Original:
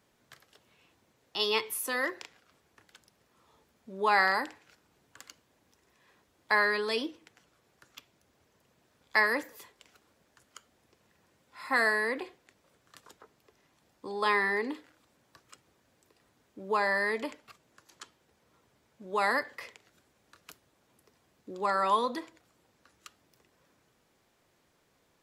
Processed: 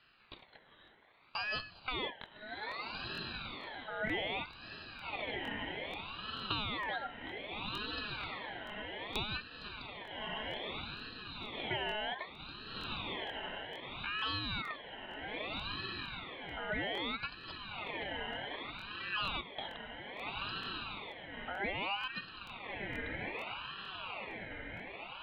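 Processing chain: in parallel at -11.5 dB: integer overflow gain 24 dB; on the sum: rippled Chebyshev low-pass 2.9 kHz, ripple 9 dB; Chebyshev shaper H 2 -32 dB, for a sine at -16 dBFS; high-pass 110 Hz; on a send: echo that smears into a reverb 1296 ms, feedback 53%, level -11.5 dB; on the sum: compression 4:1, threshold -45 dBFS, peak gain reduction 18 dB; crackling interface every 0.46 s, samples 1024, repeat, from 0.37 s; ring modulator with a swept carrier 1.6 kHz, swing 35%, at 0.63 Hz; trim +10.5 dB

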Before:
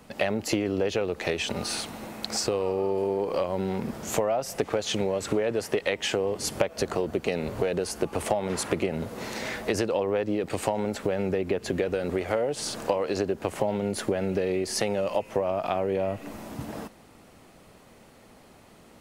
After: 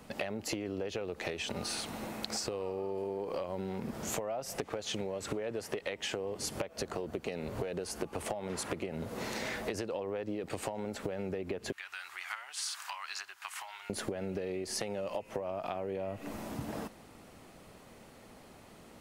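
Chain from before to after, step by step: 11.72–13.90 s: inverse Chebyshev high-pass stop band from 550 Hz, stop band 40 dB; compression, threshold -32 dBFS, peak gain reduction 13.5 dB; trim -1.5 dB

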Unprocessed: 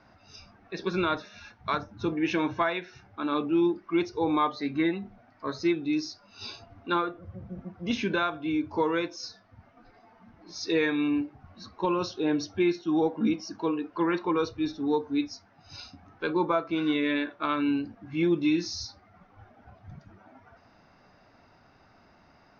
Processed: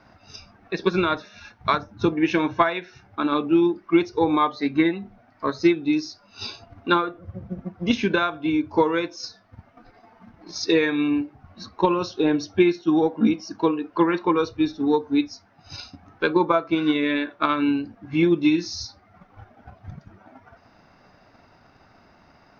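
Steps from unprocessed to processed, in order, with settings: transient shaper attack +6 dB, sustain -2 dB; trim +4 dB

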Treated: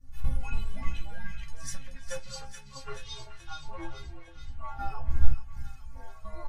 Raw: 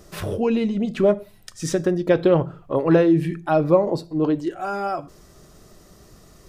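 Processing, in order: wind noise 120 Hz -25 dBFS; Chebyshev band-stop 120–1100 Hz, order 2; bass shelf 120 Hz +11.5 dB; gate -27 dBFS, range -9 dB; 2.41–4.79 s: compression 2:1, threshold -36 dBFS, peak gain reduction 17 dB; inharmonic resonator 260 Hz, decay 0.26 s, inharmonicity 0.008; trance gate ".xxx.xxxx.xxx" 62 bpm -12 dB; ever faster or slower copies 216 ms, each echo -4 st, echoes 2; doubling 15 ms -3 dB; feedback echo behind a high-pass 429 ms, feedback 53%, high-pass 1.8 kHz, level -5 dB; trim +3.5 dB

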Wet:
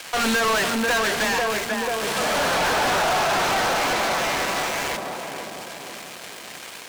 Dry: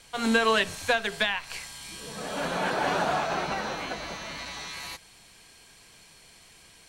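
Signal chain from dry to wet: dead-time distortion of 0.14 ms; filtered feedback delay 490 ms, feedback 60%, low-pass 880 Hz, level -9 dB; overdrive pedal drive 36 dB, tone 7.7 kHz, clips at -10 dBFS; trim -4.5 dB

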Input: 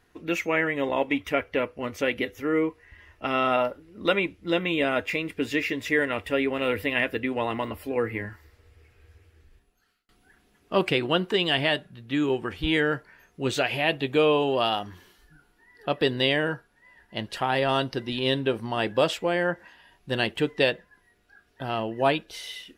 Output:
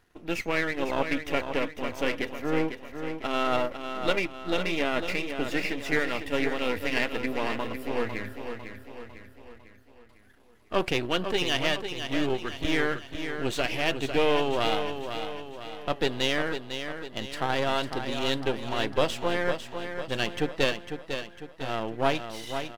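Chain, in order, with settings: partial rectifier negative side -12 dB; feedback delay 501 ms, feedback 49%, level -8 dB

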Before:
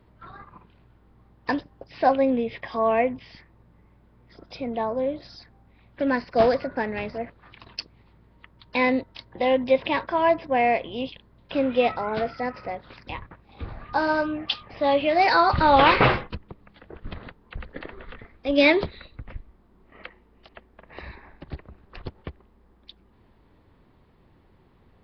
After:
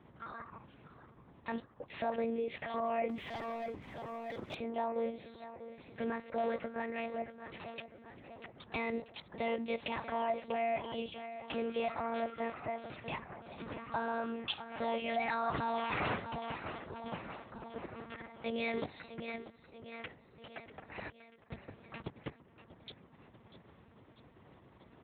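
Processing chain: compression 1.5:1, threshold -48 dBFS, peak gain reduction 12.5 dB; 17.02–18.11 s: low-pass 1.2 kHz 24 dB/octave; 21.09–21.51 s: gate -40 dBFS, range -35 dB; on a send: feedback delay 642 ms, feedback 55%, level -14.5 dB; on the sum: monotone LPC vocoder at 8 kHz 230 Hz; peak limiter -25 dBFS, peak gain reduction 11 dB; high-pass 110 Hz 12 dB/octave; 3.09–4.55 s: waveshaping leveller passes 2; trim +1 dB

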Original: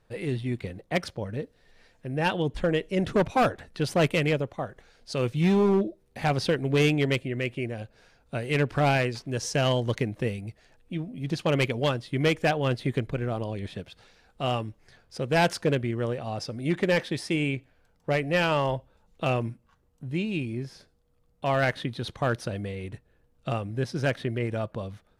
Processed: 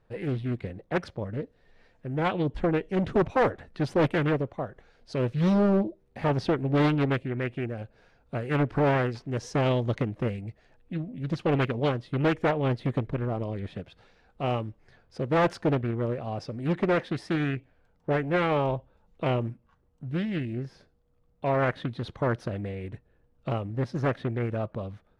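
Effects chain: low-pass 1.9 kHz 6 dB/octave; loudspeaker Doppler distortion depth 0.72 ms

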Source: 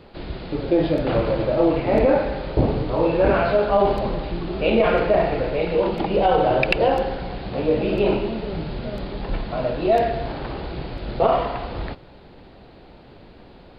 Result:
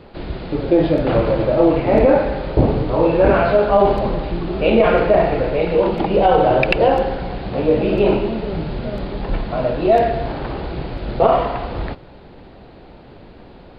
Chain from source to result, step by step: treble shelf 3.6 kHz -6.5 dB; trim +4.5 dB

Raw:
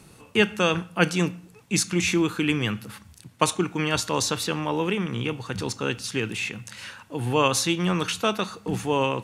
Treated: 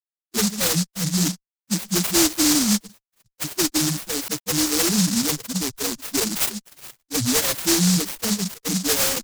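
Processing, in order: high-pass 160 Hz 24 dB/octave; fuzz box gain 43 dB, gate -36 dBFS; loudest bins only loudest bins 2; 4.28–6.00 s: brick-wall FIR low-pass 3.1 kHz; delay time shaken by noise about 5.8 kHz, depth 0.46 ms

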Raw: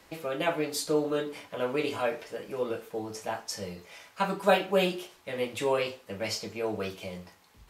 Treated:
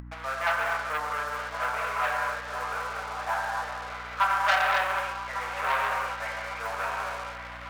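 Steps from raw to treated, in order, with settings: backward echo that repeats 575 ms, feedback 72%, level -10 dB; low-pass 1.6 kHz 24 dB/octave; gated-style reverb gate 300 ms flat, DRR -1.5 dB; waveshaping leveller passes 3; high-pass 1 kHz 24 dB/octave; hum 60 Hz, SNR 19 dB; upward compressor, threshold -35 dBFS

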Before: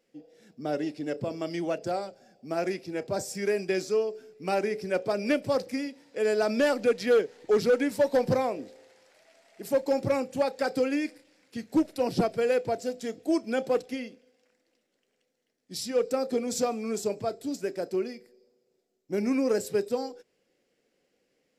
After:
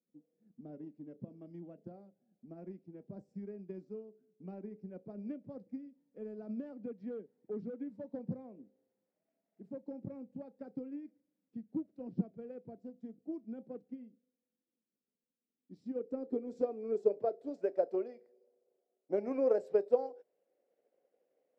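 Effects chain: low-pass sweep 200 Hz -> 610 Hz, 15.29–17.73 s; differentiator; transient shaper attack +5 dB, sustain -2 dB; trim +14 dB

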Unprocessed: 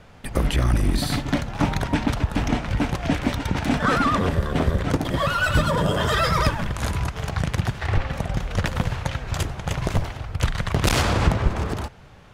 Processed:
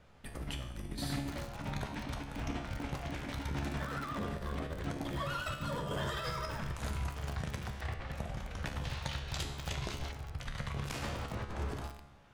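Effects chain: compressor with a negative ratio -22 dBFS, ratio -0.5; feedback comb 70 Hz, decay 0.84 s, harmonics all, mix 80%; 8.84–10.12 s: peaking EQ 4.1 kHz +9.5 dB 1.4 oct; bit-crushed delay 258 ms, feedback 55%, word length 5-bit, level -10 dB; trim -5 dB

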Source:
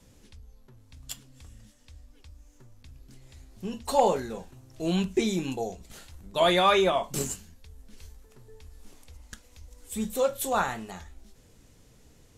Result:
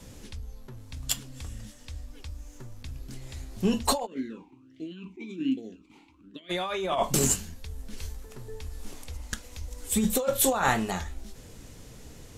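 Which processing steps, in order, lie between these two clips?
compressor with a negative ratio -31 dBFS, ratio -1; 4.05–6.49 s: talking filter i-u 1.9 Hz -> 0.9 Hz; trim +5.5 dB

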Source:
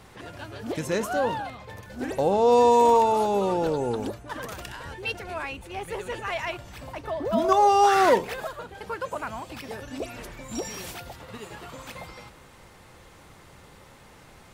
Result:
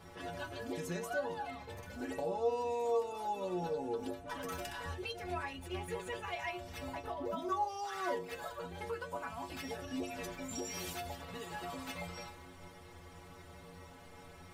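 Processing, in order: compression 3:1, threshold -37 dBFS, peak gain reduction 16.5 dB; inharmonic resonator 85 Hz, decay 0.35 s, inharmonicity 0.008; tape noise reduction on one side only decoder only; trim +7.5 dB

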